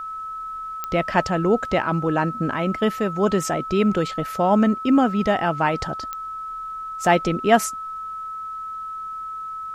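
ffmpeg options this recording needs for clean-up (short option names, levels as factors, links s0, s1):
-af "adeclick=t=4,bandreject=f=1300:w=30,agate=range=0.0891:threshold=0.0631"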